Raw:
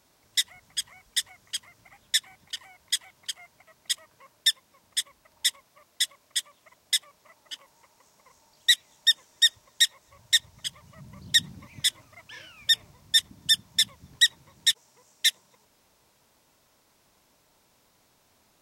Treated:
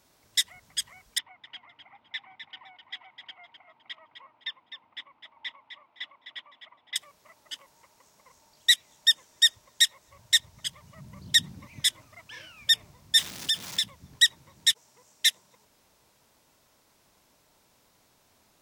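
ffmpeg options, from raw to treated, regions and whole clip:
-filter_complex "[0:a]asettb=1/sr,asplit=3[s0][s1][s2];[s0]atrim=end=1.184[s3];[s1]atrim=start=1.18:end=6.96,asetpts=PTS-STARTPTS,afade=t=in:d=0.004:c=qsin,afade=t=out:st=5.776:d=0.004:c=qsin,highpass=180,equalizer=f=180:t=q:w=4:g=-9,equalizer=f=400:t=q:w=4:g=-8,equalizer=f=560:t=q:w=4:g=-6,equalizer=f=890:t=q:w=4:g=8,equalizer=f=1700:t=q:w=4:g=-9,lowpass=f=2500:w=0.5412,lowpass=f=2500:w=1.3066,aecho=1:1:256|512|768:0.376|0.094|0.0235,atrim=end_sample=254898[s4];[s2]atrim=start=6.956[s5];[s3][s4]acrossfade=d=0.004:c1=hsin:c2=qsin[s6];[s6][s5]acrossfade=d=0.004:c1=qsin:c2=hsin,asettb=1/sr,asplit=3[s7][s8][s9];[s7]atrim=end=13.194[s10];[s8]atrim=start=13.19:end=13.84,asetpts=PTS-STARTPTS,afade=t=in:d=0.004:c=qsin,afade=t=out:st=0.646:d=0.004:c=qsin,aeval=exprs='val(0)+0.5*0.0447*sgn(val(0))':c=same,acrossover=split=1600|7200[s11][s12][s13];[s11]acompressor=threshold=0.00501:ratio=4[s14];[s12]acompressor=threshold=0.0562:ratio=4[s15];[s13]acompressor=threshold=0.00708:ratio=4[s16];[s14][s15][s16]amix=inputs=3:normalize=0,lowshelf=f=140:g=-12[s17];[s9]atrim=start=13.836[s18];[s10][s17]acrossfade=d=0.004:c1=hsin:c2=qsin[s19];[s19][s18]acrossfade=d=0.004:c1=qsin:c2=hsin"

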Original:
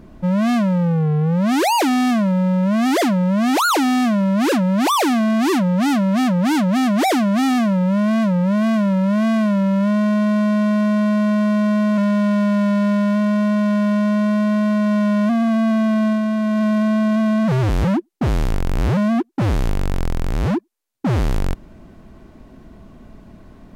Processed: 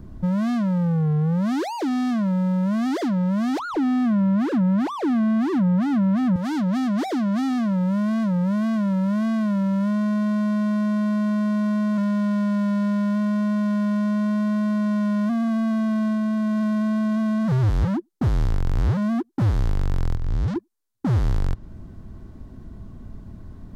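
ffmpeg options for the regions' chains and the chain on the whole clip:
-filter_complex "[0:a]asettb=1/sr,asplit=3[s0][s1][s2];[s0]atrim=end=3.594[s3];[s1]atrim=start=3.59:end=6.36,asetpts=PTS-STARTPTS,afade=t=in:d=0.004:c=qsin,afade=t=out:st=2.766:d=0.004:c=qsin,bass=f=250:g=14,treble=f=4000:g=-14,acrossover=split=9100[s4][s5];[s5]acompressor=threshold=0.002:ratio=4:attack=1:release=60[s6];[s4][s6]amix=inputs=2:normalize=0[s7];[s2]atrim=start=6.356[s8];[s3][s7]acrossfade=d=0.004:c1=hsin:c2=qsin[s9];[s9][s8]acrossfade=d=0.004:c1=qsin:c2=hsin,asettb=1/sr,asplit=3[s10][s11][s12];[s10]atrim=end=20.154[s13];[s11]atrim=start=20.15:end=20.56,asetpts=PTS-STARTPTS,afade=t=in:d=0.004:c=qsin,afade=t=out:st=0.406:d=0.004:c=qsin,aecho=1:1:6.9:0.52,atrim=end_sample=18081,asoftclip=type=hard:threshold=0.0596,acrossover=split=6900[s14][s15];[s15]acompressor=threshold=0.00126:ratio=4:attack=1:release=60[s16];[s14][s16]amix=inputs=2:normalize=0[s17];[s12]atrim=start=20.556[s18];[s13][s17]acrossfade=d=0.004:c1=hsin:c2=qsin[s19];[s19][s18]acrossfade=d=0.004:c1=qsin:c2=hsin,equalizer=f=100:t=o:w=0.67:g=7,equalizer=f=630:t=o:w=0.67:g=-4,equalizer=f=2500:t=o:w=0.67:g=-7,acrossover=split=470|6100[s20][s21][s22];[s20]acompressor=threshold=0.0891:ratio=4[s23];[s21]acompressor=threshold=0.0447:ratio=4[s24];[s22]acompressor=threshold=0.00251:ratio=4[s25];[s23][s24][s25]amix=inputs=3:normalize=0,lowshelf=f=160:g=9,volume=0.631"

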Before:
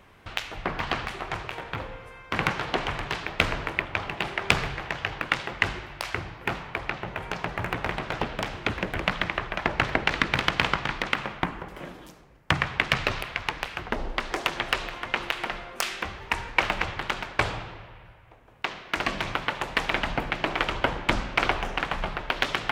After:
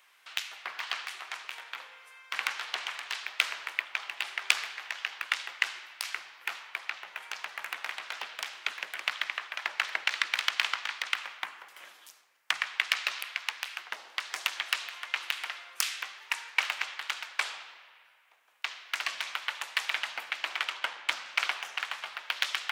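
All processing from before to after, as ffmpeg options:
-filter_complex "[0:a]asettb=1/sr,asplit=3[s0][s1][s2];[s0]atrim=end=20.574[s3];[s1]atrim=start=20.57:end=21.26,asetpts=PTS-STARTPTS,afade=t=in:d=0.004:c=qsin,afade=t=out:st=0.686:d=0.004:c=qsin,highpass=54,adynamicsmooth=sensitivity=6:basefreq=6100[s4];[s2]atrim=start=21.256[s5];[s3][s4]acrossfade=d=0.004:c1=hsin:c2=qsin[s6];[s6][s5]acrossfade=d=0.004:c1=qsin:c2=hsin,highpass=1200,highshelf=f=3200:g=10.5,volume=0.473"

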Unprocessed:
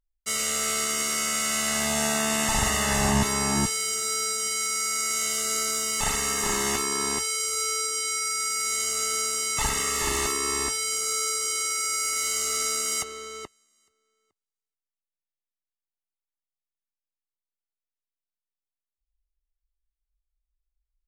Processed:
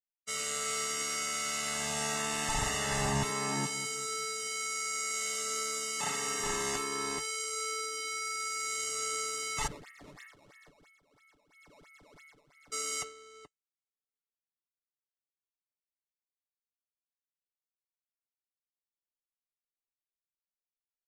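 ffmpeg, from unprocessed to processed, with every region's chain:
-filter_complex "[0:a]asettb=1/sr,asplit=3[s0][s1][s2];[s0]atrim=end=3.304[s3];[s1]atrim=start=3.3:end=6.4,asetpts=PTS-STARTPTS,afade=t=in:d=0.004:c=qsin,afade=t=out:st=3.096:d=0.004:c=qsin,highpass=f=140:w=0.5412,highpass=f=140:w=1.3066,asplit=2[s4][s5];[s5]adelay=196,lowpass=f=1400:p=1,volume=0.251,asplit=2[s6][s7];[s7]adelay=196,lowpass=f=1400:p=1,volume=0.39,asplit=2[s8][s9];[s9]adelay=196,lowpass=f=1400:p=1,volume=0.39,asplit=2[s10][s11];[s11]adelay=196,lowpass=f=1400:p=1,volume=0.39[s12];[s4][s6][s8][s10][s12]amix=inputs=5:normalize=0,atrim=end_sample=136710[s13];[s2]atrim=start=6.396[s14];[s3][s13]acrossfade=d=0.004:c1=hsin:c2=qsin[s15];[s15][s14]acrossfade=d=0.004:c1=qsin:c2=hsin,asettb=1/sr,asplit=3[s16][s17][s18];[s16]atrim=end=9.674[s19];[s17]atrim=start=9.67:end=12.72,asetpts=PTS-STARTPTS,afade=t=in:d=0.004:c=qsin,afade=t=out:st=3.046:d=0.004:c=qsin,asuperpass=centerf=1900:order=4:qfactor=3,acrusher=samples=16:mix=1:aa=0.000001:lfo=1:lforange=25.6:lforate=3[s20];[s18]atrim=start=12.716[s21];[s19][s20]acrossfade=d=0.004:c1=hsin:c2=qsin[s22];[s22][s21]acrossfade=d=0.004:c1=qsin:c2=hsin,agate=range=0.0224:threshold=0.0355:ratio=3:detection=peak,lowpass=9200,aecho=1:1:6.9:0.49,volume=0.398"

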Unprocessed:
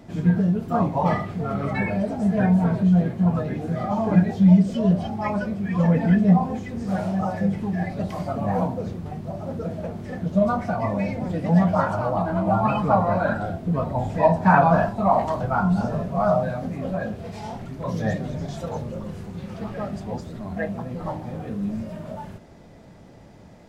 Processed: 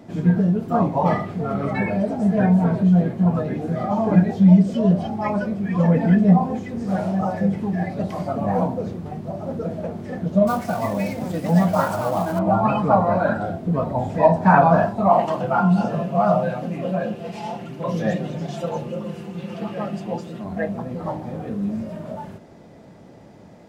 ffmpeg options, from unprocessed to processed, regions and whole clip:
-filter_complex "[0:a]asettb=1/sr,asplit=3[s0][s1][s2];[s0]atrim=end=10.474[s3];[s1]atrim=start=10.47:end=12.39,asetpts=PTS-STARTPTS,afade=t=in:d=0.004:c=qsin,afade=t=out:st=1.916:d=0.004:c=qsin,aeval=exprs='sgn(val(0))*max(abs(val(0))-0.00631,0)':c=same,aemphasis=mode=production:type=75fm[s4];[s2]atrim=start=12.386[s5];[s3][s4]acrossfade=d=0.004:c1=hsin:c2=qsin[s6];[s6][s5]acrossfade=d=0.004:c1=qsin:c2=hsin,asettb=1/sr,asplit=3[s7][s8][s9];[s7]atrim=end=15.104[s10];[s8]atrim=start=15.1:end=20.44,asetpts=PTS-STARTPTS,afade=t=in:d=0.004:c=qsin,afade=t=out:st=5.336:d=0.004:c=qsin,highpass=140,equalizer=f=2800:t=o:w=0.31:g=10.5,aecho=1:1:5.8:0.5,atrim=end_sample=235494[s11];[s9]atrim=start=20.436[s12];[s10][s11]acrossfade=d=0.004:c1=hsin:c2=qsin[s13];[s13][s12]acrossfade=d=0.004:c1=qsin:c2=hsin,highpass=f=230:p=1,tiltshelf=f=740:g=3.5,volume=1.41"

